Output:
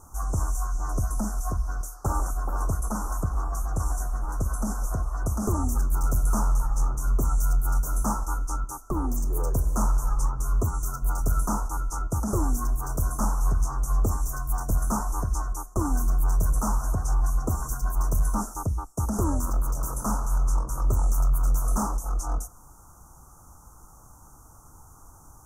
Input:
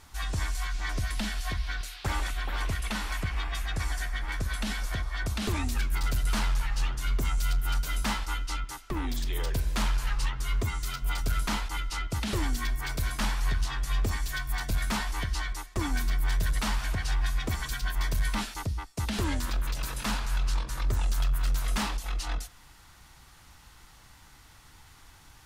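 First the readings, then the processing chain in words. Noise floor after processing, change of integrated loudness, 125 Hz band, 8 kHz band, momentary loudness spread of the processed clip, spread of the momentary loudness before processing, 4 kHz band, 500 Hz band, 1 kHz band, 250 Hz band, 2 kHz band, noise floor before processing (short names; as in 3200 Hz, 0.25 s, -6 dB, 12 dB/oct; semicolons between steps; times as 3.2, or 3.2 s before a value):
-51 dBFS, +3.5 dB, +4.5 dB, +4.5 dB, 5 LU, 4 LU, -16.5 dB, +5.5 dB, +4.5 dB, +5.0 dB, -11.0 dB, -54 dBFS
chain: Chebyshev band-stop 1300–6100 Hz, order 4; gain +5.5 dB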